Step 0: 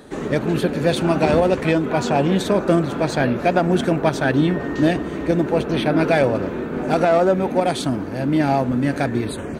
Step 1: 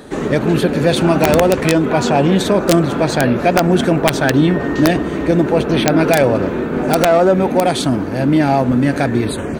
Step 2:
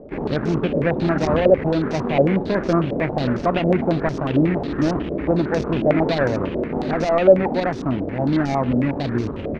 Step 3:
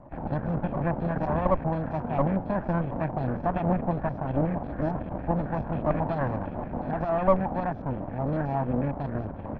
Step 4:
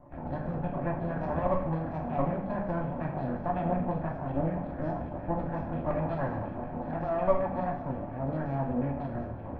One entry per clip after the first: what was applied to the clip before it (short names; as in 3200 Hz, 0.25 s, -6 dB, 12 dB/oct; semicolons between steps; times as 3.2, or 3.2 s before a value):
in parallel at +1 dB: limiter -12.5 dBFS, peak gain reduction 9.5 dB; on the sum: wrapped overs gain 2 dB
median filter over 41 samples; low shelf 62 Hz +7.5 dB; stepped low-pass 11 Hz 600–5700 Hz; gain -6.5 dB
minimum comb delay 1.2 ms; LPF 1200 Hz 12 dB/oct; gain -6 dB
reverb, pre-delay 3 ms, DRR 0 dB; gain -7 dB